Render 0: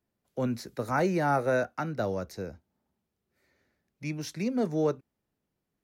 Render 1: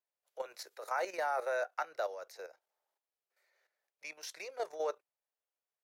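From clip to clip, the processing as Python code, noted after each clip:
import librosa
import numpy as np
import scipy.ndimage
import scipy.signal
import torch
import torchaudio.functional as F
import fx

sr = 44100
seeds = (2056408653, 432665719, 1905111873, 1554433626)

y = scipy.signal.sosfilt(scipy.signal.cheby2(4, 40, 260.0, 'highpass', fs=sr, output='sos'), x)
y = fx.level_steps(y, sr, step_db=11)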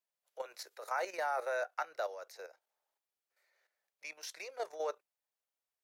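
y = fx.low_shelf(x, sr, hz=340.0, db=-6.0)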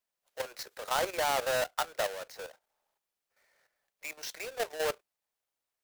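y = fx.halfwave_hold(x, sr)
y = F.gain(torch.from_numpy(y), 2.0).numpy()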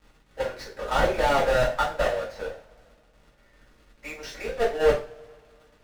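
y = fx.dmg_crackle(x, sr, seeds[0], per_s=130.0, level_db=-45.0)
y = fx.riaa(y, sr, side='playback')
y = fx.rev_double_slope(y, sr, seeds[1], early_s=0.34, late_s=2.4, knee_db=-27, drr_db=-7.5)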